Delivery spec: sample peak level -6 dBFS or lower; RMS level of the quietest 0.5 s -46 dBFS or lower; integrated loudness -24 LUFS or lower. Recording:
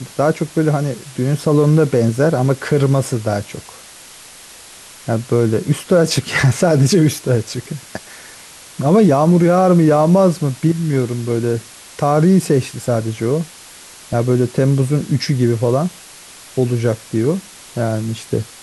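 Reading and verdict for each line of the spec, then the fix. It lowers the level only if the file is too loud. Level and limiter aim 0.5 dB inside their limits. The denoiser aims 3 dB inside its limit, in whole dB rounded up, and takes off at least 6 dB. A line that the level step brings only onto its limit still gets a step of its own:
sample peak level -4.0 dBFS: fail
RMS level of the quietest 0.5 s -39 dBFS: fail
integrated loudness -16.0 LUFS: fail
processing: trim -8.5 dB

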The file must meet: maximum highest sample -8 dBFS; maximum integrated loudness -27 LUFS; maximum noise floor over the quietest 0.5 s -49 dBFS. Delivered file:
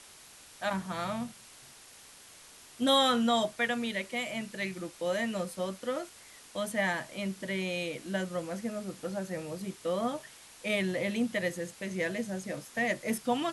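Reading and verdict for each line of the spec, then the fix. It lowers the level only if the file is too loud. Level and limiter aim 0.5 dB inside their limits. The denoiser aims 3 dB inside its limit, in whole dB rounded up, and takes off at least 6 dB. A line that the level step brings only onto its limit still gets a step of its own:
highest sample -14.0 dBFS: pass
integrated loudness -32.5 LUFS: pass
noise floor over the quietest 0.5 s -54 dBFS: pass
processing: none needed

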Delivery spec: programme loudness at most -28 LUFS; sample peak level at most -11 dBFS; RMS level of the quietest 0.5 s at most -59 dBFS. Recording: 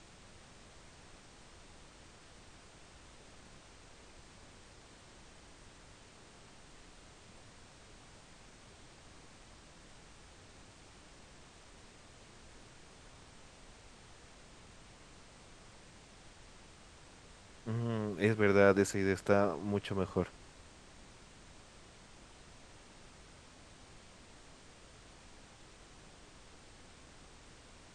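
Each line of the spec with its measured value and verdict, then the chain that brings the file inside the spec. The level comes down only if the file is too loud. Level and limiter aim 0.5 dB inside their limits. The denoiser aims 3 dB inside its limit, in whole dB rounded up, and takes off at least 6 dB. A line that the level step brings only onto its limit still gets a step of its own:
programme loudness -32.0 LUFS: pass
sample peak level -12.0 dBFS: pass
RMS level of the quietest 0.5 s -57 dBFS: fail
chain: noise reduction 6 dB, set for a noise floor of -57 dBFS

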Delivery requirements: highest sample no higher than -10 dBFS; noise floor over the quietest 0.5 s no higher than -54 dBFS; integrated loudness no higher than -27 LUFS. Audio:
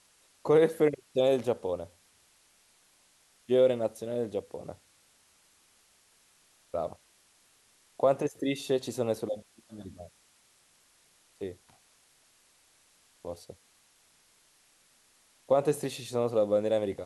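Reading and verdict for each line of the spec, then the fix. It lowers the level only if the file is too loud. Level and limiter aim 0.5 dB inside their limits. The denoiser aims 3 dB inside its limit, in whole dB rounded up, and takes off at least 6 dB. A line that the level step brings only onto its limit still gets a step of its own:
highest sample -12.0 dBFS: pass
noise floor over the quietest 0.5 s -65 dBFS: pass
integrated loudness -29.5 LUFS: pass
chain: none needed

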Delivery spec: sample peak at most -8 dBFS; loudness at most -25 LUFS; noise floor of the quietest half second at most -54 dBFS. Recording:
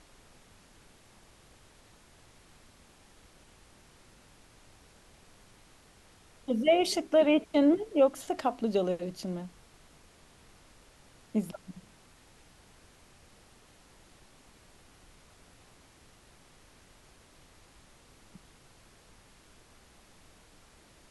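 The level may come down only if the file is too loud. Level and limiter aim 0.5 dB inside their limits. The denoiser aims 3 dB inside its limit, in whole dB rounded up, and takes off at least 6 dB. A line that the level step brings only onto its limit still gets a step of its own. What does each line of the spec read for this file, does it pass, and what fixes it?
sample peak -13.5 dBFS: pass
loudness -28.0 LUFS: pass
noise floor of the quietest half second -59 dBFS: pass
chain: none needed

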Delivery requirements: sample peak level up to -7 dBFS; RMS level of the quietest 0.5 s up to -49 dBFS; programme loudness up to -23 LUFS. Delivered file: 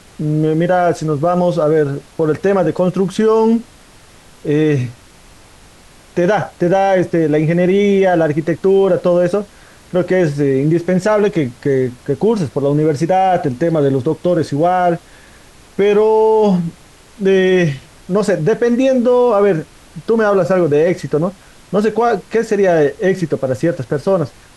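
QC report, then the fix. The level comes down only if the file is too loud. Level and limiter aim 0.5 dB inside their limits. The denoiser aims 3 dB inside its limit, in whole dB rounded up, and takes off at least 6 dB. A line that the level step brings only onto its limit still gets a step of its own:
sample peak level -5.0 dBFS: fail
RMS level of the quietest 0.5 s -43 dBFS: fail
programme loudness -15.0 LUFS: fail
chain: trim -8.5 dB

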